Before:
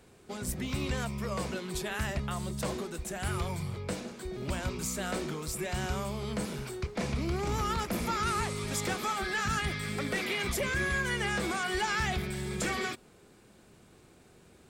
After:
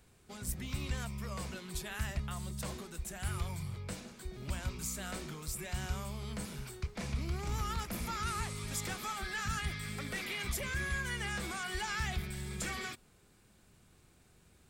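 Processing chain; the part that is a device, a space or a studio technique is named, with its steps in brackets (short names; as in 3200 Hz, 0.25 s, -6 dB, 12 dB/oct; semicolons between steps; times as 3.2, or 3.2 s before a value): smiley-face EQ (low shelf 87 Hz +7.5 dB; bell 410 Hz -6.5 dB 2 oct; high shelf 9800 Hz +6 dB); gain -5.5 dB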